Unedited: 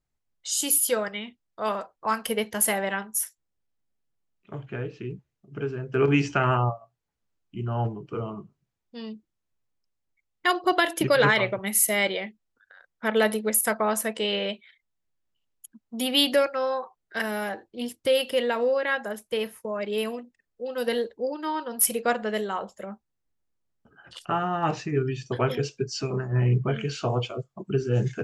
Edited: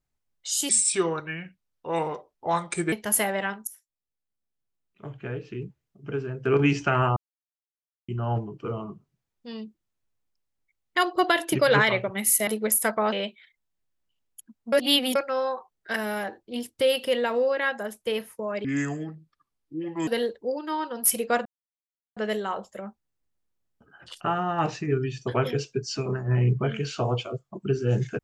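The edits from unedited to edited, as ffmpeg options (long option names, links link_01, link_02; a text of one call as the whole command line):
ffmpeg -i in.wav -filter_complex "[0:a]asplit=13[link_01][link_02][link_03][link_04][link_05][link_06][link_07][link_08][link_09][link_10][link_11][link_12][link_13];[link_01]atrim=end=0.694[link_14];[link_02]atrim=start=0.69:end=2.41,asetpts=PTS-STARTPTS,asetrate=33957,aresample=44100,atrim=end_sample=98509,asetpts=PTS-STARTPTS[link_15];[link_03]atrim=start=2.406:end=3.16,asetpts=PTS-STARTPTS,afade=type=out:start_time=0.75:duration=0.004:curve=hsin:silence=0.0794328[link_16];[link_04]atrim=start=3.16:end=6.65,asetpts=PTS-STARTPTS,afade=type=in:duration=1.83:silence=0.0794328,afade=type=out:start_time=3.486:duration=0.004:curve=hsin[link_17];[link_05]atrim=start=6.65:end=7.57,asetpts=PTS-STARTPTS,volume=0[link_18];[link_06]atrim=start=7.57:end=11.962,asetpts=PTS-STARTPTS,afade=type=in:duration=0.004:curve=hsin[link_19];[link_07]atrim=start=13.298:end=13.952[link_20];[link_08]atrim=start=14.378:end=15.982[link_21];[link_09]atrim=start=15.978:end=16.412,asetpts=PTS-STARTPTS,areverse[link_22];[link_10]atrim=start=16.408:end=19.904[link_23];[link_11]atrim=start=19.9:end=20.83,asetpts=PTS-STARTPTS,asetrate=28665,aresample=44100[link_24];[link_12]atrim=start=20.826:end=22.21,asetpts=PTS-STARTPTS,afade=type=out:start_time=1.38:duration=0.004:curve=hsin,apad=pad_dur=0.71[link_25];[link_13]atrim=start=22.21,asetpts=PTS-STARTPTS,afade=type=in:duration=0.004:curve=hsin[link_26];[link_14][link_15]acrossfade=duration=0.004:curve1=hsin:curve2=hsin[link_27];[link_16][link_17][link_18][link_19]concat=n=4:v=0:a=1[link_28];[link_27][link_28]acrossfade=duration=0.004:curve1=hsin:curve2=hsin[link_29];[link_29][link_20]acrossfade=duration=0.004:curve1=hsin:curve2=hsin[link_30];[link_30][link_21]acrossfade=duration=0.004:curve1=hsin:curve2=hsin[link_31];[link_31][link_22]acrossfade=duration=0.004:curve1=hsin:curve2=hsin[link_32];[link_32][link_23]acrossfade=duration=0.004:curve1=hsin:curve2=hsin[link_33];[link_33][link_24]acrossfade=duration=0.004:curve1=hsin:curve2=hsin[link_34];[link_25][link_26]concat=n=2:v=0:a=1[link_35];[link_34][link_35]acrossfade=duration=0.004:curve1=hsin:curve2=hsin" out.wav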